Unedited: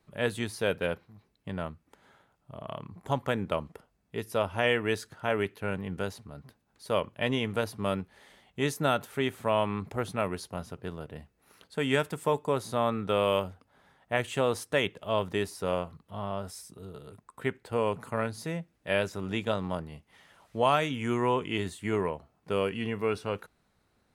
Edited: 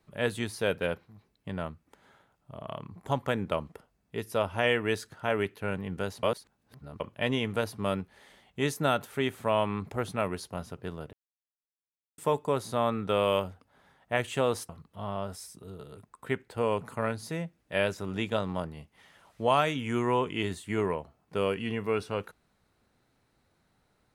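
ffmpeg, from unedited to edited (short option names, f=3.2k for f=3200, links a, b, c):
-filter_complex "[0:a]asplit=6[a][b][c][d][e][f];[a]atrim=end=6.232[g];[b]atrim=start=6.228:end=7.002,asetpts=PTS-STARTPTS,areverse[h];[c]atrim=start=6.998:end=11.13,asetpts=PTS-STARTPTS,afade=t=out:st=4.128:d=0.004:c=hsin[i];[d]atrim=start=11.13:end=12.18,asetpts=PTS-STARTPTS,volume=0[j];[e]atrim=start=12.18:end=14.692,asetpts=PTS-STARTPTS,afade=t=in:d=0.004:c=hsin[k];[f]atrim=start=15.838[l];[g][h]acrossfade=d=0.004:c1=hsin:c2=hsin[m];[i][j][k]concat=n=3:v=0:a=1[n];[m][n]acrossfade=d=0.004:c1=hsin:c2=hsin[o];[o][l]acrossfade=d=0.004:c1=hsin:c2=hsin"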